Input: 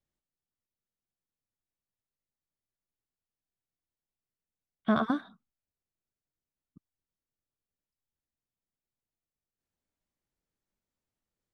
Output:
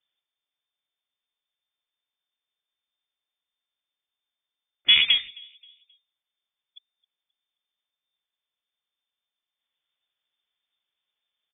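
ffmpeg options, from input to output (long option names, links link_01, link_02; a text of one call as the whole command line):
ffmpeg -i in.wav -filter_complex "[0:a]asplit=2[link_01][link_02];[link_02]acrusher=bits=3:dc=4:mix=0:aa=0.000001,volume=-10dB[link_03];[link_01][link_03]amix=inputs=2:normalize=0,asplit=2[link_04][link_05];[link_05]adelay=265,lowpass=frequency=910:poles=1,volume=-23.5dB,asplit=2[link_06][link_07];[link_07]adelay=265,lowpass=frequency=910:poles=1,volume=0.41,asplit=2[link_08][link_09];[link_09]adelay=265,lowpass=frequency=910:poles=1,volume=0.41[link_10];[link_04][link_06][link_08][link_10]amix=inputs=4:normalize=0,lowpass=frequency=3100:width_type=q:width=0.5098,lowpass=frequency=3100:width_type=q:width=0.6013,lowpass=frequency=3100:width_type=q:width=0.9,lowpass=frequency=3100:width_type=q:width=2.563,afreqshift=-3600,volume=7dB" out.wav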